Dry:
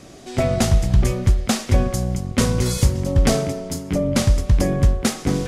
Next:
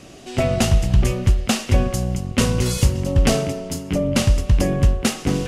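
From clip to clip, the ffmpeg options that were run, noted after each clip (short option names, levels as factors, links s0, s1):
-af "equalizer=f=2800:w=6.3:g=9.5"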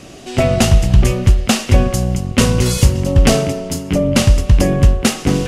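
-af "asoftclip=type=hard:threshold=0.473,volume=1.88"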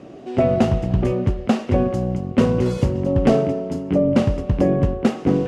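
-af "bandpass=f=380:t=q:w=0.68:csg=0"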